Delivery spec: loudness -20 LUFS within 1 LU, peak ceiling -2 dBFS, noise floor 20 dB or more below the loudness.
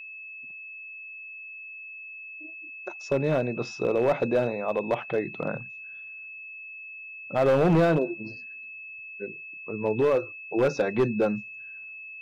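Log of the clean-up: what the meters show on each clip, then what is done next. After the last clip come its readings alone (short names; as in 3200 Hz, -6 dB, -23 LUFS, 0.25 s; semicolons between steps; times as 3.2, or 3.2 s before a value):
clipped 1.2%; flat tops at -16.5 dBFS; steady tone 2600 Hz; tone level -39 dBFS; loudness -26.5 LUFS; peak -16.5 dBFS; loudness target -20.0 LUFS
-> clip repair -16.5 dBFS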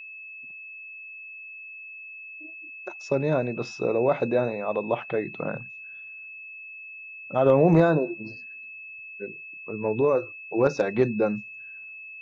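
clipped 0.0%; steady tone 2600 Hz; tone level -39 dBFS
-> notch 2600 Hz, Q 30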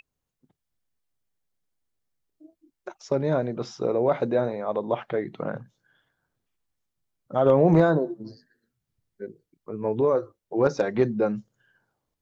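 steady tone none; loudness -24.5 LUFS; peak -7.5 dBFS; loudness target -20.0 LUFS
-> gain +4.5 dB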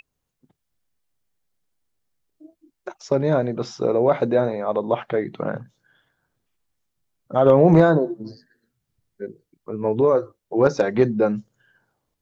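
loudness -20.0 LUFS; peak -3.0 dBFS; noise floor -79 dBFS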